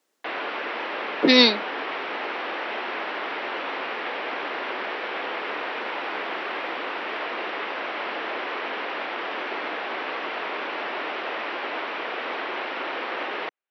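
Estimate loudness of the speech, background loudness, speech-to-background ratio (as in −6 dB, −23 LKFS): −17.0 LKFS, −29.5 LKFS, 12.5 dB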